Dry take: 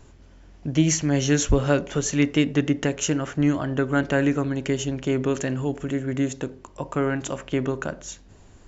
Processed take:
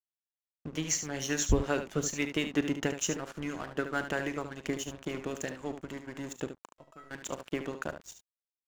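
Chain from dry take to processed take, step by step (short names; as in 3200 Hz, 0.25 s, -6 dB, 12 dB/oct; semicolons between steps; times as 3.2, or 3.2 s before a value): harmonic-percussive split harmonic -12 dB; crossover distortion -39 dBFS; 6.69–7.11 resonator 650 Hz, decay 0.34 s, mix 90%; early reflections 38 ms -16.5 dB, 73 ms -9.5 dB; gain -4 dB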